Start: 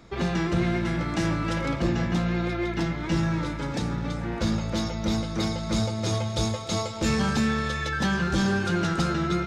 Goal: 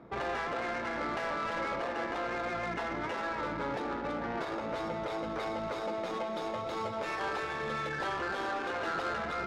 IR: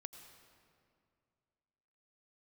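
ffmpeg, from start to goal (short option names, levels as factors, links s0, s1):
-filter_complex "[0:a]afftfilt=real='re*lt(hypot(re,im),0.2)':imag='im*lt(hypot(re,im),0.2)':win_size=1024:overlap=0.75,highpass=f=490:p=1,asplit=2[s0][s1];[s1]alimiter=level_in=2.11:limit=0.0631:level=0:latency=1,volume=0.473,volume=1.19[s2];[s0][s2]amix=inputs=2:normalize=0,asoftclip=type=tanh:threshold=0.0562,adynamicsmooth=sensitivity=2:basefreq=870"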